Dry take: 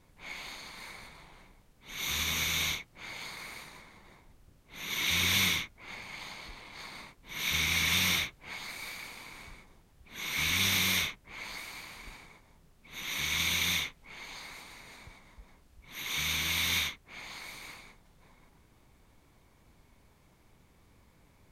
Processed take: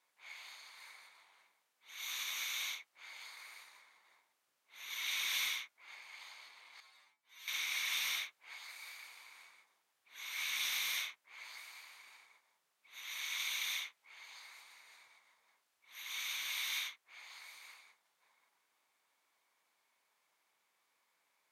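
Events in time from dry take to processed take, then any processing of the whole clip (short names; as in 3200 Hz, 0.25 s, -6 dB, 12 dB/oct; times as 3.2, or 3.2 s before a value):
6.8–7.48 metallic resonator 79 Hz, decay 0.34 s, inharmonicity 0.002
whole clip: HPF 940 Hz 12 dB/oct; gain -8.5 dB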